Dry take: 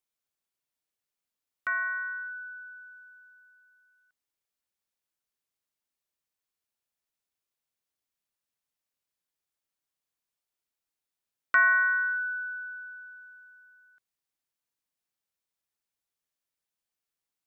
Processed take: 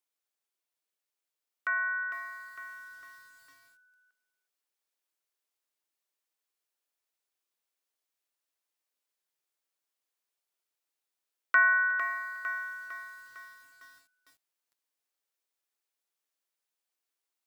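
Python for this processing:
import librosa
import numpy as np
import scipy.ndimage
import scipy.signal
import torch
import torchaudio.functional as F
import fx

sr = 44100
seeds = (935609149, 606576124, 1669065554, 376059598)

p1 = scipy.signal.sosfilt(scipy.signal.butter(4, 300.0, 'highpass', fs=sr, output='sos'), x)
p2 = fx.rider(p1, sr, range_db=5, speed_s=0.5)
p3 = p1 + (p2 * librosa.db_to_amplitude(-2.5))
p4 = p3 + 10.0 ** (-21.0 / 20.0) * np.pad(p3, (int(362 * sr / 1000.0), 0))[:len(p3)]
p5 = fx.echo_crushed(p4, sr, ms=454, feedback_pct=55, bits=8, wet_db=-7.5)
y = p5 * librosa.db_to_amplitude(-6.5)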